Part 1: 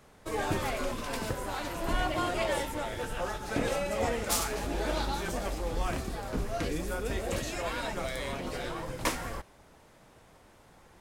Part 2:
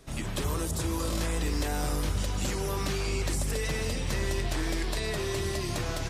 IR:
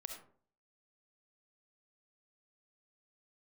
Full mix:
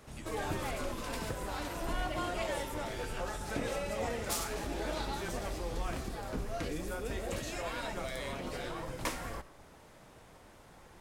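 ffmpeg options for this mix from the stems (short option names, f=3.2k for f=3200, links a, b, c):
-filter_complex "[0:a]volume=-1.5dB,asplit=2[a][b];[b]volume=-4.5dB[c];[1:a]volume=-10.5dB[d];[2:a]atrim=start_sample=2205[e];[c][e]afir=irnorm=-1:irlink=0[f];[a][d][f]amix=inputs=3:normalize=0,acompressor=threshold=-44dB:ratio=1.5"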